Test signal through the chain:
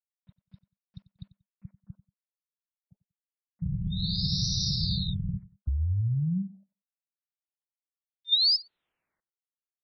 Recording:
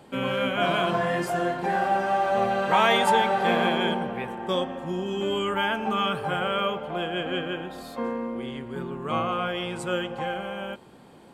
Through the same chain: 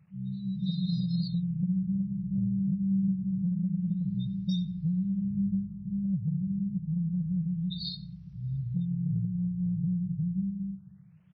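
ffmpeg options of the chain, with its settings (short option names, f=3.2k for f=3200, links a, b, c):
-filter_complex "[0:a]afftfilt=real='re*(1-between(b*sr/4096,200,3600))':imag='im*(1-between(b*sr/4096,200,3600))':win_size=4096:overlap=0.75,highpass=150,aemphasis=mode=reproduction:type=bsi,afftdn=nr=30:nf=-53,dynaudnorm=f=250:g=7:m=14dB,alimiter=limit=-12dB:level=0:latency=1:release=461,acrossover=split=590|4300[a][b][c];[a]acompressor=threshold=-21dB:ratio=4[d];[b]acompressor=threshold=-42dB:ratio=4[e];[c]acompressor=threshold=-31dB:ratio=4[f];[d][e][f]amix=inputs=3:normalize=0,crystalizer=i=4.5:c=0,flanger=delay=1.7:depth=2.9:regen=65:speed=0.81:shape=sinusoidal,acrusher=bits=11:mix=0:aa=0.000001,asplit=2[g][h];[h]adelay=93,lowpass=f=4.8k:p=1,volume=-17dB,asplit=2[i][j];[j]adelay=93,lowpass=f=4.8k:p=1,volume=0.24[k];[g][i][k]amix=inputs=3:normalize=0,afftfilt=real='re*lt(b*sr/1024,810*pow(6000/810,0.5+0.5*sin(2*PI*0.27*pts/sr)))':imag='im*lt(b*sr/1024,810*pow(6000/810,0.5+0.5*sin(2*PI*0.27*pts/sr)))':win_size=1024:overlap=0.75"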